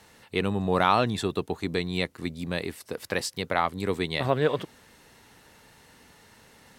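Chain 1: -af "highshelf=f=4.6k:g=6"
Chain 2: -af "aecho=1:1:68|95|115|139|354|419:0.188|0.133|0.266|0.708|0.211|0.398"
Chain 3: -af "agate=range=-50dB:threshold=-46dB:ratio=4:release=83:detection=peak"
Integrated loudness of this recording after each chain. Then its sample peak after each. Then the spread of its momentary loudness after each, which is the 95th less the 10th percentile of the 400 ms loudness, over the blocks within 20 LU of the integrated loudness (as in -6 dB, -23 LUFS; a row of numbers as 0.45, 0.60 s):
-27.5, -25.5, -28.0 LUFS; -6.0, -3.5, -6.5 dBFS; 10, 11, 10 LU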